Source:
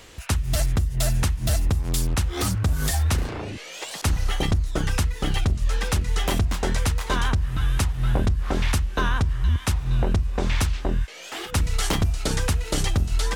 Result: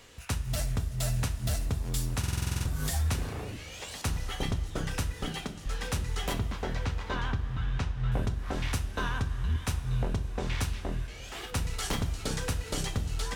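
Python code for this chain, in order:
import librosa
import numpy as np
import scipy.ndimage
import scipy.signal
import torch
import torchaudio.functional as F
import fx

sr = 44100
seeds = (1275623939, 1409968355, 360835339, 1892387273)

y = fx.steep_highpass(x, sr, hz=160.0, slope=36, at=(5.26, 5.66))
y = np.clip(y, -10.0 ** (-16.5 / 20.0), 10.0 ** (-16.5 / 20.0))
y = fx.air_absorb(y, sr, metres=140.0, at=(6.33, 8.12))
y = fx.rev_double_slope(y, sr, seeds[0], early_s=0.31, late_s=4.5, knee_db=-18, drr_db=5.5)
y = fx.buffer_glitch(y, sr, at_s=(2.19,), block=2048, repeats=9)
y = y * 10.0 ** (-8.0 / 20.0)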